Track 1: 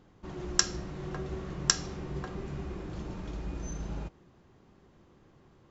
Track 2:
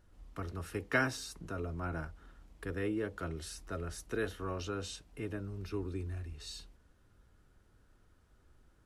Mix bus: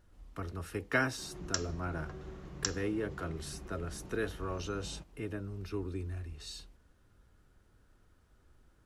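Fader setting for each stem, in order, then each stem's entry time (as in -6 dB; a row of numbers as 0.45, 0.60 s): -9.5, +0.5 dB; 0.95, 0.00 s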